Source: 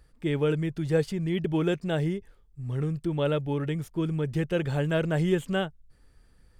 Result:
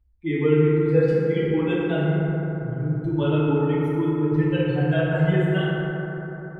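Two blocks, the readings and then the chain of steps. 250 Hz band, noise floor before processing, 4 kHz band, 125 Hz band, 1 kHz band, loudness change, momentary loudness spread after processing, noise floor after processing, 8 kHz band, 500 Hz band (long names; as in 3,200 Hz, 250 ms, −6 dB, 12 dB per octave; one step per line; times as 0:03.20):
+6.5 dB, −60 dBFS, +1.0 dB, +6.5 dB, +5.5 dB, +6.0 dB, 8 LU, −37 dBFS, can't be measured, +6.5 dB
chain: spectral dynamics exaggerated over time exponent 2
high shelf with overshoot 4,400 Hz −12.5 dB, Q 1.5
in parallel at 0 dB: downward compressor, threshold −38 dBFS, peak gain reduction 16 dB
on the sum: feedback delay network reverb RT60 4 s, high-frequency decay 0.3×, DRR −9 dB
level −3.5 dB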